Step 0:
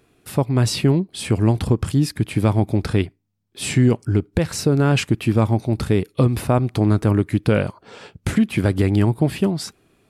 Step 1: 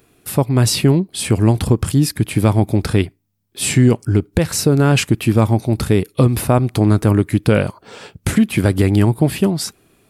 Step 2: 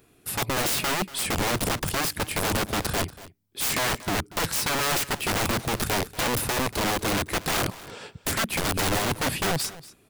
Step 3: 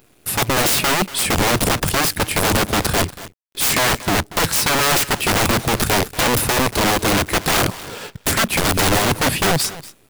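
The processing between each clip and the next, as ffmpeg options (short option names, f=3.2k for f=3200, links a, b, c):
-af "highshelf=f=9.5k:g=12,volume=3.5dB"
-af "aeval=exprs='(mod(5.96*val(0)+1,2)-1)/5.96':c=same,aecho=1:1:236:0.126,volume=-4.5dB"
-af "acrusher=bits=8:dc=4:mix=0:aa=0.000001,volume=8.5dB"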